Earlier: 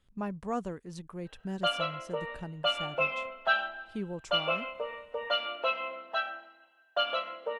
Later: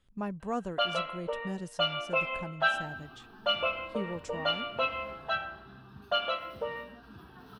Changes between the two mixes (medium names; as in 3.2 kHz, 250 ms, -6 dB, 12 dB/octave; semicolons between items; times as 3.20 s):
first sound: entry -0.85 s; second sound: unmuted